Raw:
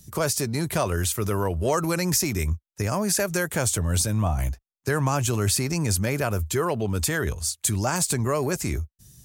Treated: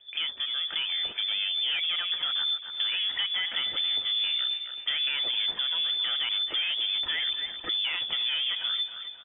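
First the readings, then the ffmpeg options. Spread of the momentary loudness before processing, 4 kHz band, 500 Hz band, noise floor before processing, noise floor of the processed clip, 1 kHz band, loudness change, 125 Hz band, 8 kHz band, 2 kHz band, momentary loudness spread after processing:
5 LU, +12.0 dB, -26.0 dB, -76 dBFS, -42 dBFS, -15.0 dB, -1.5 dB, under -35 dB, under -40 dB, -2.0 dB, 3 LU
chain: -filter_complex "[0:a]bandreject=f=60:t=h:w=6,bandreject=f=120:t=h:w=6,bandreject=f=180:t=h:w=6,bandreject=f=240:t=h:w=6,bandreject=f=300:t=h:w=6,bandreject=f=360:t=h:w=6,dynaudnorm=f=910:g=3:m=2.51,aresample=11025,asoftclip=type=tanh:threshold=0.133,aresample=44100,bandreject=f=2500:w=9.2,lowpass=f=3100:t=q:w=0.5098,lowpass=f=3100:t=q:w=0.6013,lowpass=f=3100:t=q:w=0.9,lowpass=f=3100:t=q:w=2.563,afreqshift=-3600,lowshelf=f=170:g=-4.5,asplit=2[s0][s1];[s1]adelay=267,lowpass=f=2000:p=1,volume=0.335,asplit=2[s2][s3];[s3]adelay=267,lowpass=f=2000:p=1,volume=0.46,asplit=2[s4][s5];[s5]adelay=267,lowpass=f=2000:p=1,volume=0.46,asplit=2[s6][s7];[s7]adelay=267,lowpass=f=2000:p=1,volume=0.46,asplit=2[s8][s9];[s9]adelay=267,lowpass=f=2000:p=1,volume=0.46[s10];[s0][s2][s4][s6][s8][s10]amix=inputs=6:normalize=0,acompressor=threshold=0.0355:ratio=2.5"

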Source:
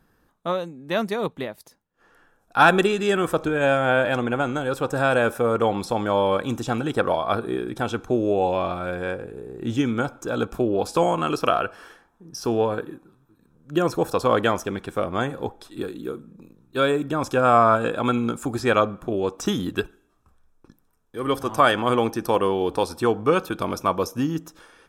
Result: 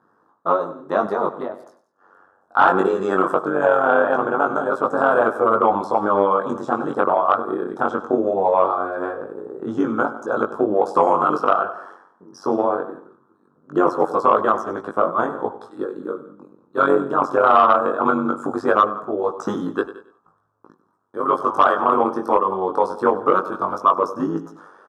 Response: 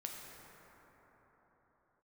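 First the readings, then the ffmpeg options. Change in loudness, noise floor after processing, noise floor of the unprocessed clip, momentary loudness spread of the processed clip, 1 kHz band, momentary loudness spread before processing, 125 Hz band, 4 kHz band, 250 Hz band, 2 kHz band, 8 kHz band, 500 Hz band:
+3.5 dB, -62 dBFS, -65 dBFS, 12 LU, +6.0 dB, 13 LU, -8.0 dB, no reading, +0.5 dB, 0.0 dB, under -10 dB, +3.0 dB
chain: -filter_complex "[0:a]highshelf=f=1700:t=q:w=3:g=-12,tremolo=f=95:d=0.857,asplit=2[s0][s1];[s1]aecho=0:1:97|194|291:0.178|0.0605|0.0206[s2];[s0][s2]amix=inputs=2:normalize=0,flanger=delay=18:depth=3.5:speed=0.2,deesser=0.8,highpass=260,asplit=2[s3][s4];[s4]aecho=0:1:168:0.0944[s5];[s3][s5]amix=inputs=2:normalize=0,acontrast=70,alimiter=limit=0.422:level=0:latency=1:release=406,lowpass=8000,volume=1.5"

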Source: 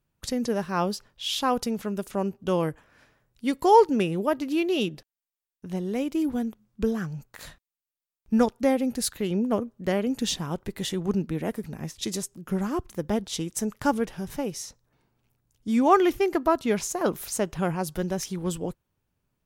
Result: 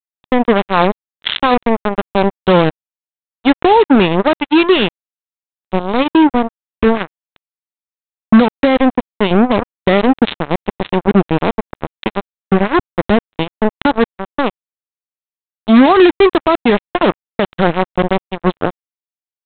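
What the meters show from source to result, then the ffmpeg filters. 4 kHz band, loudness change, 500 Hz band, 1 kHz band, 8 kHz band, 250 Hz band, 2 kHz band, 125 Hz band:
+11.5 dB, +12.5 dB, +12.0 dB, +11.5 dB, under -40 dB, +13.0 dB, +16.5 dB, +11.0 dB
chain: -af "aresample=8000,acrusher=bits=3:mix=0:aa=0.5,aresample=44100,alimiter=level_in=7.08:limit=0.891:release=50:level=0:latency=1,volume=0.891"

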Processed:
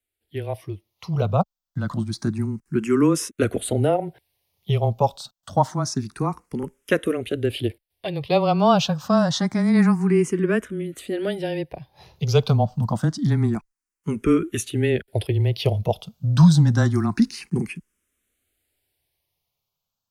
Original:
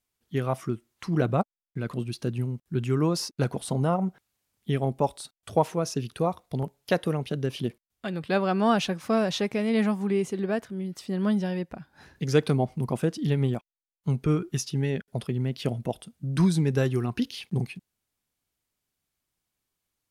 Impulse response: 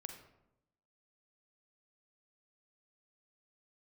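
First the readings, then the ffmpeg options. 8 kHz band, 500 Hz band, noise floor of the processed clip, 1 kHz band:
+5.5 dB, +4.5 dB, -85 dBFS, +5.5 dB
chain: -filter_complex "[0:a]afreqshift=-15,dynaudnorm=f=290:g=9:m=3.98,asplit=2[s0][s1];[s1]afreqshift=0.27[s2];[s0][s2]amix=inputs=2:normalize=1"

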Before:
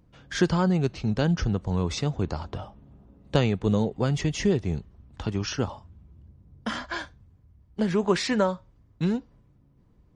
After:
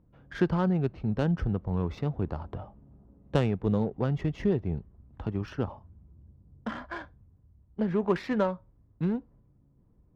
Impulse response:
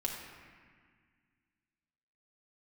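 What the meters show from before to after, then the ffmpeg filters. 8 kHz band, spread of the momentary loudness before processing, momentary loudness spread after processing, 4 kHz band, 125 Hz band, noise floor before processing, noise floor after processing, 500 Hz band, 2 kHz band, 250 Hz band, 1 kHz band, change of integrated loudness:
under -20 dB, 12 LU, 14 LU, -13.5 dB, -3.0 dB, -60 dBFS, -63 dBFS, -3.0 dB, -7.0 dB, -3.0 dB, -4.0 dB, -3.5 dB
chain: -af "adynamicsmooth=sensitivity=1:basefreq=1400,volume=0.708"

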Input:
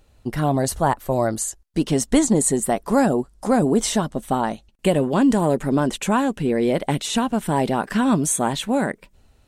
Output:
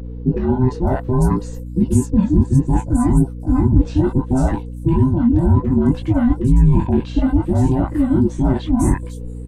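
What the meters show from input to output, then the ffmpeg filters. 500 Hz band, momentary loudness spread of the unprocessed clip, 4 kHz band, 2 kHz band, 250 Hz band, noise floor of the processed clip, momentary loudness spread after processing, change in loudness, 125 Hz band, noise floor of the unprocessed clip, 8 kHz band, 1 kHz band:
-2.5 dB, 7 LU, under -10 dB, -7.5 dB, +4.5 dB, -30 dBFS, 5 LU, +4.0 dB, +11.0 dB, -58 dBFS, -11.5 dB, -4.5 dB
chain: -filter_complex "[0:a]afftfilt=real='real(if(between(b,1,1008),(2*floor((b-1)/24)+1)*24-b,b),0)':imag='imag(if(between(b,1,1008),(2*floor((b-1)/24)+1)*24-b,b),0)*if(between(b,1,1008),-1,1)':win_size=2048:overlap=0.75,flanger=delay=17.5:depth=5.5:speed=0.63,tiltshelf=f=970:g=9,areverse,acompressor=threshold=0.0631:ratio=8,areverse,lowshelf=f=200:g=11.5,aeval=exprs='val(0)+0.0178*(sin(2*PI*60*n/s)+sin(2*PI*2*60*n/s)/2+sin(2*PI*3*60*n/s)/3+sin(2*PI*4*60*n/s)/4+sin(2*PI*5*60*n/s)/5)':c=same,acrossover=split=740|5400[s0][s1][s2];[s1]adelay=40[s3];[s2]adelay=540[s4];[s0][s3][s4]amix=inputs=3:normalize=0,volume=2.24"

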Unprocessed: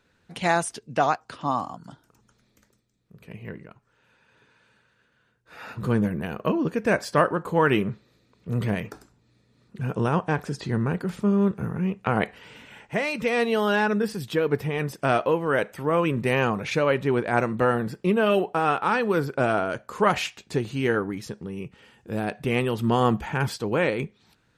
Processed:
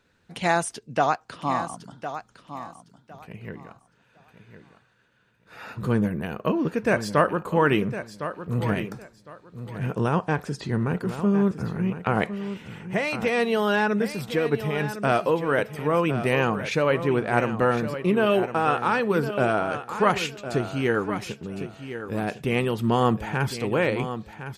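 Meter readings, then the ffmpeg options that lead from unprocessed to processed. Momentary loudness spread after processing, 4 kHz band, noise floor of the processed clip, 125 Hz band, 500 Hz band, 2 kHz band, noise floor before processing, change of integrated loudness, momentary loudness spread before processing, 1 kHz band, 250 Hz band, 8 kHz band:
14 LU, +0.5 dB, -63 dBFS, +0.5 dB, +0.5 dB, +0.5 dB, -67 dBFS, 0.0 dB, 12 LU, +0.5 dB, +0.5 dB, +0.5 dB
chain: -af "aecho=1:1:1058|2116|3174:0.282|0.0592|0.0124"

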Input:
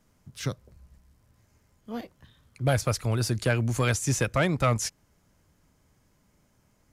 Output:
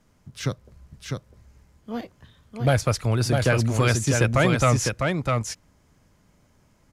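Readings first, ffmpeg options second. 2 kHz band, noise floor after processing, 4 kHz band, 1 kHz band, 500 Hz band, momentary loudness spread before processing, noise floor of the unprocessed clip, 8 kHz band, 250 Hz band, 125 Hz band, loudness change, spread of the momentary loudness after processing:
+5.0 dB, -62 dBFS, +4.5 dB, +5.5 dB, +5.5 dB, 14 LU, -67 dBFS, +3.0 dB, +5.5 dB, +5.0 dB, +4.0 dB, 15 LU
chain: -af "highshelf=f=9700:g=-8.5,aecho=1:1:652:0.631,volume=1.58"

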